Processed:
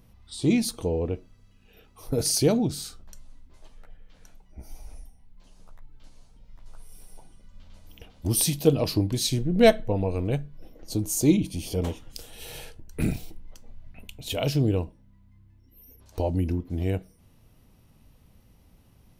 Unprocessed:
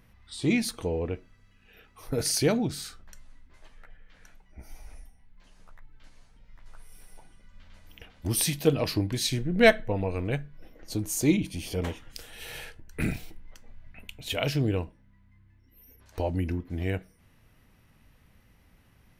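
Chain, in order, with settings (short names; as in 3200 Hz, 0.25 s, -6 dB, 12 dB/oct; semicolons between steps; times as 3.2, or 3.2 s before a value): bell 1800 Hz -11.5 dB 1.2 oct; gain +3.5 dB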